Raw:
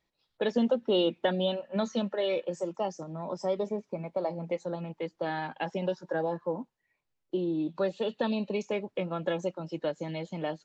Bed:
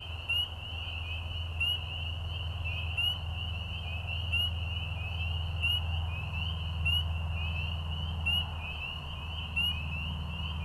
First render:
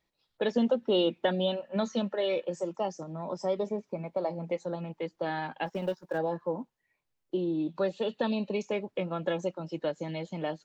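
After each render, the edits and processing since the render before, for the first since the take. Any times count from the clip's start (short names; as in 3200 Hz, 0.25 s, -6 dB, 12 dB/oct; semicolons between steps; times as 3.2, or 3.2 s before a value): 5.66–6.18 G.711 law mismatch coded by A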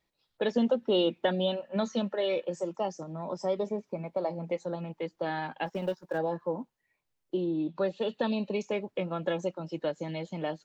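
7.46–8.01 air absorption 73 m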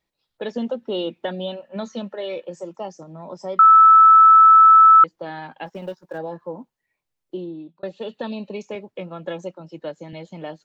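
3.59–5.04 bleep 1310 Hz -6.5 dBFS; 7.39–7.83 fade out; 8.75–10.13 three-band expander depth 40%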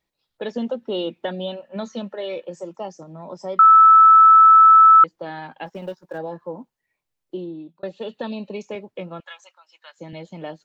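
9.2–9.99 HPF 1100 Hz 24 dB/oct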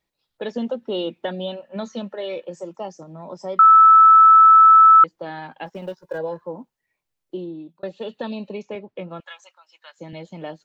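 5.98–6.42 comb 2 ms, depth 79%; 8.53–9.1 air absorption 120 m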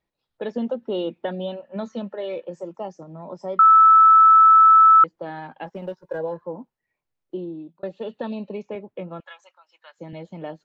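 high shelf 3000 Hz -11.5 dB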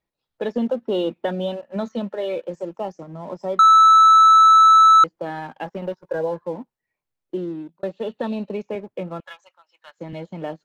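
sample leveller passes 1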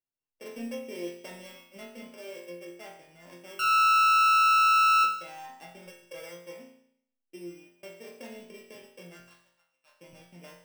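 sample sorter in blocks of 16 samples; resonator bank F2 sus4, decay 0.69 s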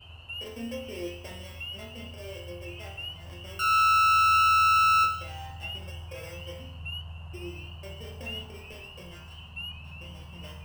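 add bed -8 dB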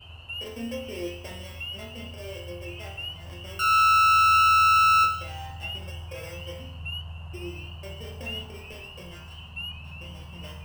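gain +2.5 dB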